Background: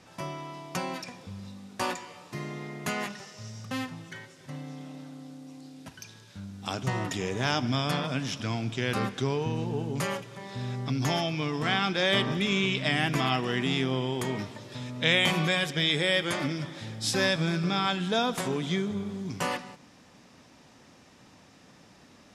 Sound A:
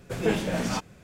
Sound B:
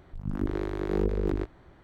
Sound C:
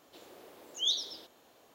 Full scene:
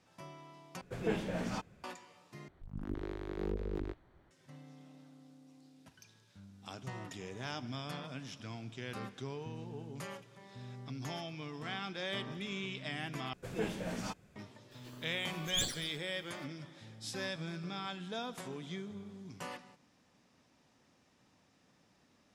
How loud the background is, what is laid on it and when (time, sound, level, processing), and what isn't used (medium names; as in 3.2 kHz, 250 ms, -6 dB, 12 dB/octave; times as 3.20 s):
background -14 dB
0.81 s: replace with A -9 dB + treble shelf 5 kHz -8.5 dB
2.48 s: replace with B -10.5 dB + dynamic bell 3.4 kHz, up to +4 dB, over -53 dBFS, Q 0.91
13.33 s: replace with A -11.5 dB
14.71 s: add C -1.5 dB + comb filter that takes the minimum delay 0.66 ms